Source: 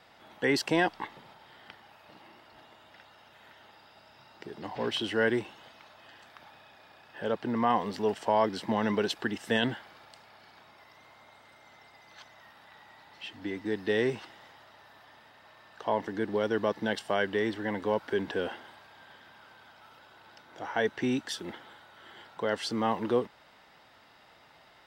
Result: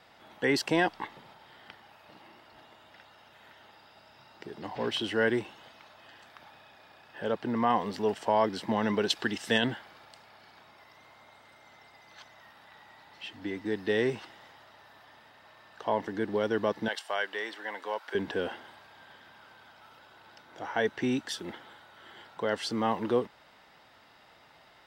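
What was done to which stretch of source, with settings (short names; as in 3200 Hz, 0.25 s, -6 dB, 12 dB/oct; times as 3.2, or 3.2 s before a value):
9.1–9.58 bell 4900 Hz +7 dB 2.1 oct
16.88–18.15 HPF 720 Hz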